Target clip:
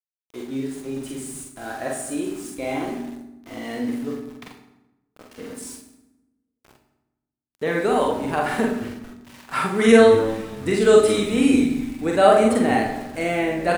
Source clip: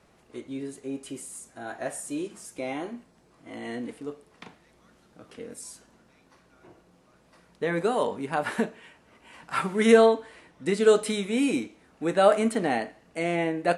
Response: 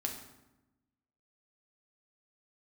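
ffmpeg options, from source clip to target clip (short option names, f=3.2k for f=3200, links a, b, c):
-filter_complex "[0:a]asplit=5[a][b][c][d][e];[b]adelay=225,afreqshift=-120,volume=-17.5dB[f];[c]adelay=450,afreqshift=-240,volume=-23.3dB[g];[d]adelay=675,afreqshift=-360,volume=-29.2dB[h];[e]adelay=900,afreqshift=-480,volume=-35dB[i];[a][f][g][h][i]amix=inputs=5:normalize=0,aeval=exprs='val(0)*gte(abs(val(0)),0.00596)':c=same,asplit=2[j][k];[1:a]atrim=start_sample=2205,adelay=45[l];[k][l]afir=irnorm=-1:irlink=0,volume=-1.5dB[m];[j][m]amix=inputs=2:normalize=0,volume=2.5dB"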